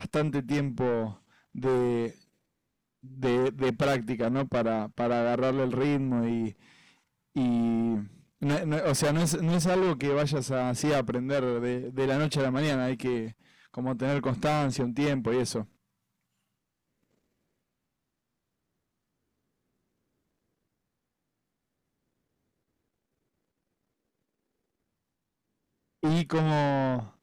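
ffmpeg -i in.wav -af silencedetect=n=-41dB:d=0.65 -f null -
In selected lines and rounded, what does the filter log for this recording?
silence_start: 2.11
silence_end: 3.04 | silence_duration: 0.93
silence_start: 6.52
silence_end: 7.36 | silence_duration: 0.84
silence_start: 15.64
silence_end: 26.03 | silence_duration: 10.39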